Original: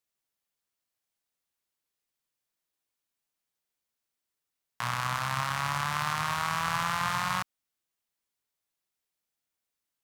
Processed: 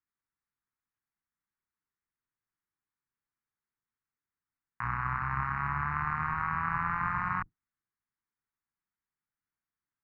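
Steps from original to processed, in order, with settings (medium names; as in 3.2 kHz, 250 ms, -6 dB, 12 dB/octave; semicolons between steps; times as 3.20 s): octave divider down 1 oct, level -5 dB; low-pass 2.3 kHz 24 dB/octave; static phaser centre 1.4 kHz, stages 4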